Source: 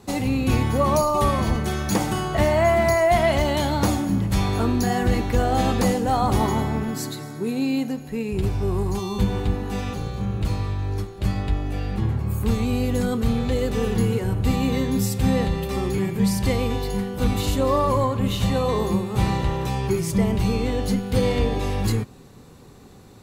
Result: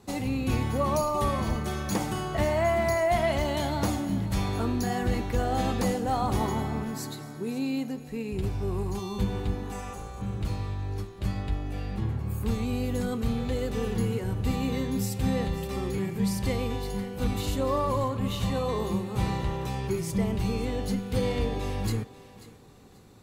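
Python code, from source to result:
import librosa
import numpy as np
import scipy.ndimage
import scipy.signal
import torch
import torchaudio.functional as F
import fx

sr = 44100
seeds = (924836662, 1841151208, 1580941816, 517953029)

y = fx.graphic_eq(x, sr, hz=(125, 250, 1000, 4000, 8000), db=(-10, -6, 4, -11, 10), at=(9.72, 10.22))
y = fx.echo_thinned(y, sr, ms=538, feedback_pct=27, hz=330.0, wet_db=-16.0)
y = y * librosa.db_to_amplitude(-6.5)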